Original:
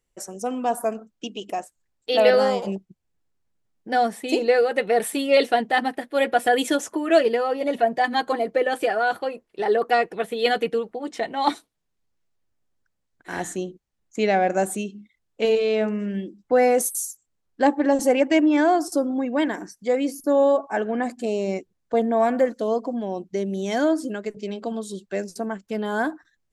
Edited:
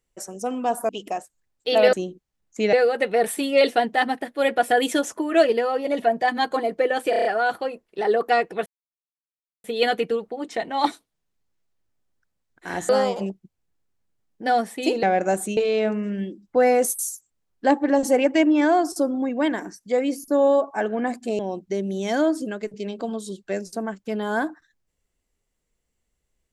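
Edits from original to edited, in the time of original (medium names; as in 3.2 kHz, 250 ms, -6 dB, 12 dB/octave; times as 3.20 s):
0.89–1.31 s: delete
2.35–4.49 s: swap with 13.52–14.32 s
8.86 s: stutter 0.03 s, 6 plays
10.27 s: insert silence 0.98 s
14.86–15.53 s: delete
21.35–23.02 s: delete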